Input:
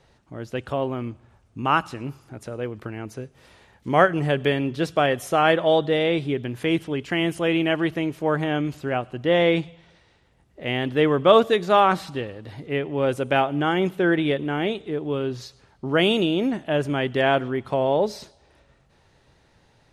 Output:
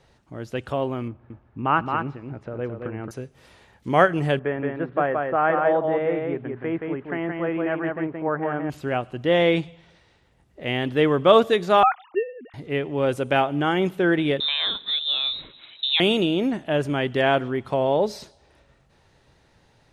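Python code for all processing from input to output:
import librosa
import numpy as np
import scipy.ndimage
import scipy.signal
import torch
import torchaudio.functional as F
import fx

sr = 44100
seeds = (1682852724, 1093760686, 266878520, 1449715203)

y = fx.chain(x, sr, fx.lowpass(hz=2000.0, slope=12),
    fx.echo_single(ms=220, db=-5.0), at=(1.08, 3.11))
y = fx.chain(y, sr, fx.lowpass(hz=1700.0, slope=24),
    fx.low_shelf(hz=390.0, db=-8.0),
    fx.echo_single(ms=174, db=-3.5), at=(4.39, 8.7))
y = fx.chain(y, sr, fx.sine_speech(),
    fx.low_shelf(hz=320.0, db=12.0),
    fx.upward_expand(threshold_db=-26.0, expansion=1.5), at=(11.83, 12.54))
y = fx.chain(y, sr, fx.freq_invert(carrier_hz=3900),
    fx.band_squash(depth_pct=70), at=(14.4, 16.0))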